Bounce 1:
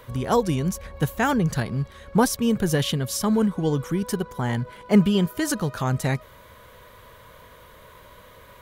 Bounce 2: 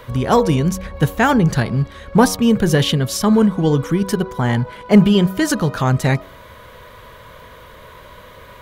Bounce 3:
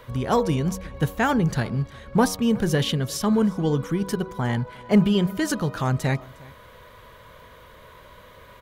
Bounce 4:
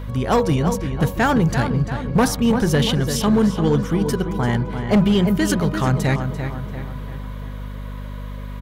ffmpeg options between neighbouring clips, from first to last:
-filter_complex "[0:a]bandreject=f=94.36:t=h:w=4,bandreject=f=188.72:t=h:w=4,bandreject=f=283.08:t=h:w=4,bandreject=f=377.44:t=h:w=4,bandreject=f=471.8:t=h:w=4,bandreject=f=566.16:t=h:w=4,bandreject=f=660.52:t=h:w=4,bandreject=f=754.88:t=h:w=4,bandreject=f=849.24:t=h:w=4,bandreject=f=943.6:t=h:w=4,bandreject=f=1.03796k:t=h:w=4,bandreject=f=1.13232k:t=h:w=4,bandreject=f=1.22668k:t=h:w=4,bandreject=f=1.32104k:t=h:w=4,acrossover=split=5800[a][b];[a]acontrast=52[c];[c][b]amix=inputs=2:normalize=0,volume=2dB"
-af "aecho=1:1:358:0.0668,volume=-7dB"
-filter_complex "[0:a]asplit=2[a][b];[b]adelay=342,lowpass=f=3.3k:p=1,volume=-8dB,asplit=2[c][d];[d]adelay=342,lowpass=f=3.3k:p=1,volume=0.51,asplit=2[e][f];[f]adelay=342,lowpass=f=3.3k:p=1,volume=0.51,asplit=2[g][h];[h]adelay=342,lowpass=f=3.3k:p=1,volume=0.51,asplit=2[i][j];[j]adelay=342,lowpass=f=3.3k:p=1,volume=0.51,asplit=2[k][l];[l]adelay=342,lowpass=f=3.3k:p=1,volume=0.51[m];[a][c][e][g][i][k][m]amix=inputs=7:normalize=0,volume=15dB,asoftclip=hard,volume=-15dB,aeval=exprs='val(0)+0.0224*(sin(2*PI*50*n/s)+sin(2*PI*2*50*n/s)/2+sin(2*PI*3*50*n/s)/3+sin(2*PI*4*50*n/s)/4+sin(2*PI*5*50*n/s)/5)':c=same,volume=4dB"

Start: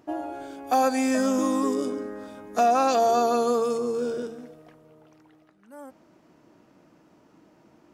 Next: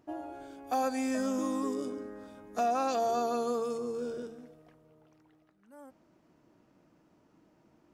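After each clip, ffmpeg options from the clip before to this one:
-af "lowshelf=f=110:g=8,volume=-9dB"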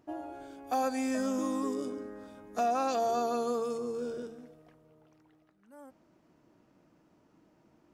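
-af anull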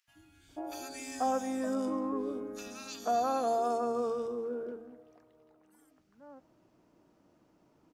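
-filter_complex "[0:a]acrossover=split=180|1900[a][b][c];[a]adelay=80[d];[b]adelay=490[e];[d][e][c]amix=inputs=3:normalize=0"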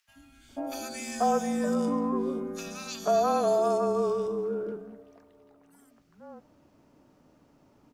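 -af "afreqshift=-32,volume=5.5dB"

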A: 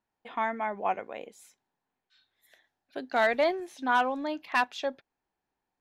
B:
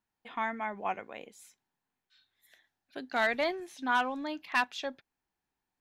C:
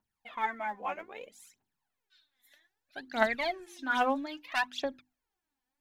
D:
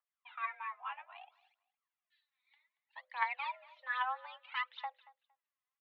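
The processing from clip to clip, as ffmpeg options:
-af "equalizer=f=560:t=o:w=1.7:g=-6.5"
-af "bandreject=f=50:t=h:w=6,bandreject=f=100:t=h:w=6,bandreject=f=150:t=h:w=6,bandreject=f=200:t=h:w=6,bandreject=f=250:t=h:w=6,bandreject=f=300:t=h:w=6,bandreject=f=350:t=h:w=6,aphaser=in_gain=1:out_gain=1:delay=4.1:decay=0.73:speed=0.62:type=triangular,volume=-3.5dB"
-af "aecho=1:1:230|460:0.0891|0.0169,highpass=f=440:t=q:w=0.5412,highpass=f=440:t=q:w=1.307,lowpass=f=3.3k:t=q:w=0.5176,lowpass=f=3.3k:t=q:w=0.7071,lowpass=f=3.3k:t=q:w=1.932,afreqshift=260,volume=-7dB"

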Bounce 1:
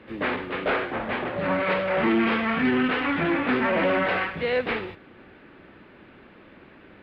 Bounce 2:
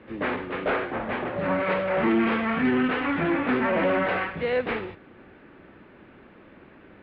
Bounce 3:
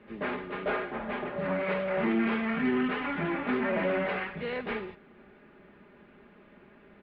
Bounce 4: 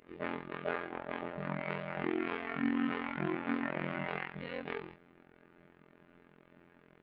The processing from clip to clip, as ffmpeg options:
-af "highshelf=f=3.9k:g=-12"
-af "aecho=1:1:4.9:0.57,volume=-6.5dB"
-af "afftfilt=real='hypot(re,im)*cos(PI*b)':imag='0':win_size=2048:overlap=0.75,aeval=exprs='val(0)*sin(2*PI*22*n/s)':c=same"

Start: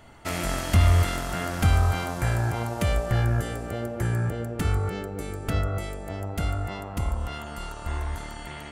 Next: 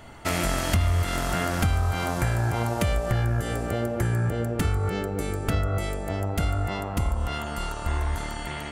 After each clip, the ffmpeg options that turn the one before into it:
-af "acompressor=threshold=-26dB:ratio=4,volume=5dB"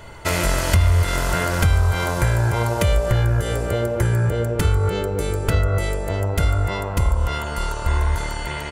-af "aecho=1:1:2:0.5,volume=4.5dB"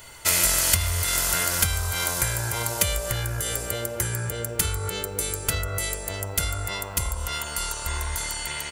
-af "crystalizer=i=9:c=0,volume=-11.5dB"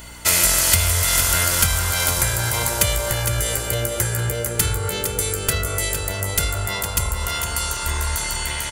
-filter_complex "[0:a]asoftclip=type=tanh:threshold=-6dB,aeval=exprs='val(0)+0.00501*(sin(2*PI*60*n/s)+sin(2*PI*2*60*n/s)/2+sin(2*PI*3*60*n/s)/3+sin(2*PI*4*60*n/s)/4+sin(2*PI*5*60*n/s)/5)':c=same,asplit=2[a][b];[b]aecho=0:1:459|918|1377|1836:0.447|0.165|0.0612|0.0226[c];[a][c]amix=inputs=2:normalize=0,volume=4.5dB"

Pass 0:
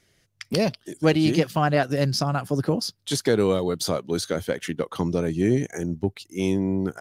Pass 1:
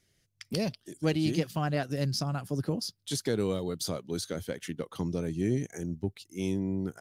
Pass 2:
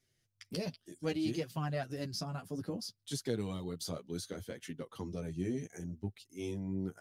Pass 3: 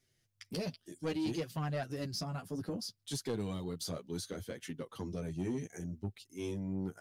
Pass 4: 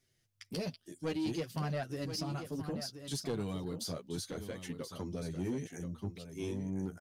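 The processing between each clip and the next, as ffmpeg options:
-af "equalizer=f=980:w=0.36:g=-6.5,volume=-5dB"
-af "flanger=delay=7.3:depth=5:regen=-2:speed=0.63:shape=triangular,volume=-4dB"
-af "asoftclip=type=tanh:threshold=-30dB,volume=1.5dB"
-af "aecho=1:1:1029:0.335"

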